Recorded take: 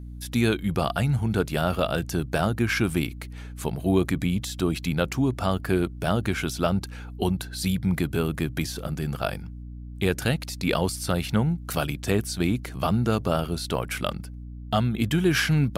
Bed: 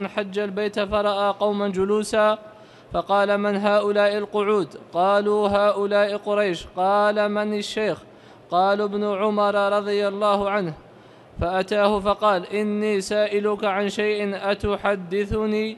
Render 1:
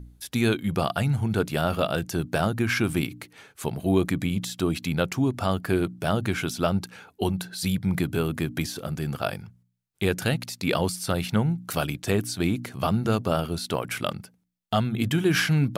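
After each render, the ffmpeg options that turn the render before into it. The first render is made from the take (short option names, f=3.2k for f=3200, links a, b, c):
-af "bandreject=f=60:t=h:w=4,bandreject=f=120:t=h:w=4,bandreject=f=180:t=h:w=4,bandreject=f=240:t=h:w=4,bandreject=f=300:t=h:w=4"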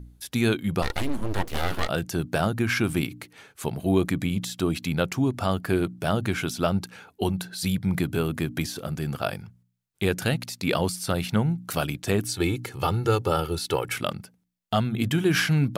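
-filter_complex "[0:a]asettb=1/sr,asplit=3[a][b][c];[a]atrim=end=0.824[d];[b]atrim=start=0.82:end=1.89,asetpts=PTS-STARTPTS,afade=t=in:d=0.004:c=qsin,afade=t=out:st=1.066:d=0.004:c=qsin,aeval=exprs='abs(val(0))':c=same[e];[c]atrim=start=1.886[f];[d][e]acrossfade=d=0.004:c1=hsin:c2=qsin[g];[g][f]acrossfade=d=0.004:c1=qsin:c2=hsin,asettb=1/sr,asplit=3[h][i][j];[h]atrim=end=12.254[k];[i]atrim=start=12.25:end=13.96,asetpts=PTS-STARTPTS,afade=t=in:d=0.004:c=qsin,afade=t=out:st=1.706:d=0.004:c=qsin,aecho=1:1:2.3:0.75,atrim=end_sample=75411[l];[j]atrim=start=13.956[m];[k][l]acrossfade=d=0.004:c1=hsin:c2=qsin[n];[n][m]acrossfade=d=0.004:c1=qsin:c2=hsin"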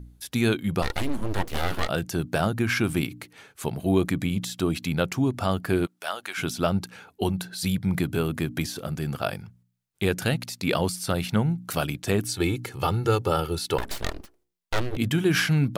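-filter_complex "[0:a]asplit=3[a][b][c];[a]afade=t=out:st=5.85:d=0.02[d];[b]highpass=930,afade=t=in:st=5.85:d=0.02,afade=t=out:st=6.37:d=0.02[e];[c]afade=t=in:st=6.37:d=0.02[f];[d][e][f]amix=inputs=3:normalize=0,asettb=1/sr,asplit=3[g][h][i];[g]atrim=end=13.784[j];[h]atrim=start=13.78:end=14.97,asetpts=PTS-STARTPTS,afade=t=in:d=0.004:c=qsin,afade=t=out:st=1.186:d=0.004:c=qsin,aeval=exprs='abs(val(0))':c=same[k];[i]atrim=start=14.966[l];[j][k]acrossfade=d=0.004:c1=hsin:c2=qsin[m];[m][l]acrossfade=d=0.004:c1=qsin:c2=hsin"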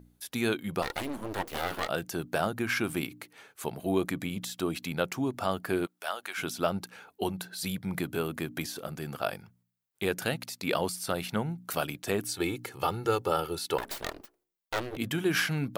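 -af "lowpass=f=1.1k:p=1,aemphasis=mode=production:type=riaa"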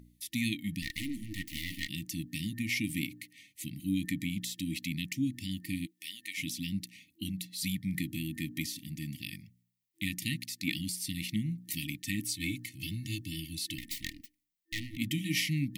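-af "afftfilt=real='re*(1-between(b*sr/4096,330,1800))':imag='im*(1-between(b*sr/4096,330,1800))':win_size=4096:overlap=0.75"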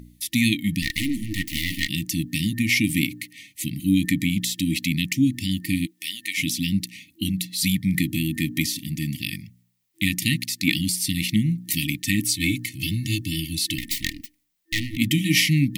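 -af "volume=12dB"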